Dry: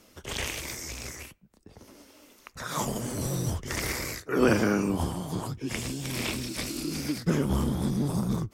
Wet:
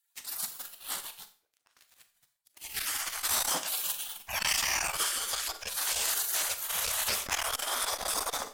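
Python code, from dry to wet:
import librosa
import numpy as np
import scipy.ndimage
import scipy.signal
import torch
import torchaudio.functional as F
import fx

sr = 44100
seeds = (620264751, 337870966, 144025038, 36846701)

y = fx.spec_gate(x, sr, threshold_db=-25, keep='weak')
y = fx.high_shelf(y, sr, hz=2800.0, db=-4.5, at=(0.96, 3.25))
y = fx.leveller(y, sr, passes=3)
y = fx.rev_schroeder(y, sr, rt60_s=0.39, comb_ms=27, drr_db=9.5)
y = fx.transformer_sat(y, sr, knee_hz=930.0)
y = F.gain(torch.from_numpy(y), 4.5).numpy()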